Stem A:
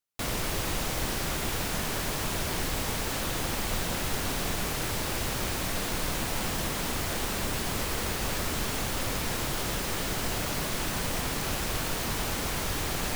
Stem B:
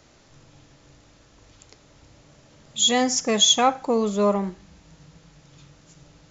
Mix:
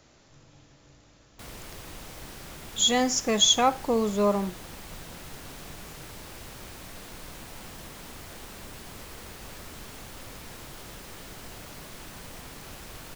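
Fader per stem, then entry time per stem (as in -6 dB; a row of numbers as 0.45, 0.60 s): -12.5, -3.0 dB; 1.20, 0.00 s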